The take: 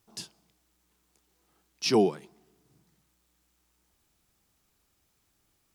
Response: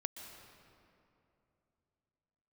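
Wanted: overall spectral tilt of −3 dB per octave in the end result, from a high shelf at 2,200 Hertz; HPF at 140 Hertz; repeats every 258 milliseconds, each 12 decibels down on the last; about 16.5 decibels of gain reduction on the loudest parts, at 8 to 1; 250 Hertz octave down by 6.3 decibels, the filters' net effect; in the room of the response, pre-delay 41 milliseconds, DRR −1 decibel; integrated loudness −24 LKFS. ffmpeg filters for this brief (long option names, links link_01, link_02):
-filter_complex "[0:a]highpass=140,equalizer=frequency=250:width_type=o:gain=-9,highshelf=frequency=2200:gain=3.5,acompressor=threshold=-39dB:ratio=8,aecho=1:1:258|516|774:0.251|0.0628|0.0157,asplit=2[link_01][link_02];[1:a]atrim=start_sample=2205,adelay=41[link_03];[link_02][link_03]afir=irnorm=-1:irlink=0,volume=2dB[link_04];[link_01][link_04]amix=inputs=2:normalize=0,volume=18.5dB"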